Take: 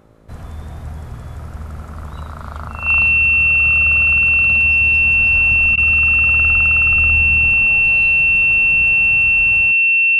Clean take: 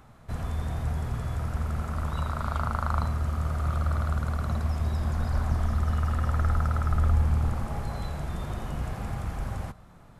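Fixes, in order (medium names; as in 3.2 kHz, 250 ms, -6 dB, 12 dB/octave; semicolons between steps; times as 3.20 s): de-hum 54.3 Hz, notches 11; band-stop 2.7 kHz, Q 30; interpolate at 5.76 s, 14 ms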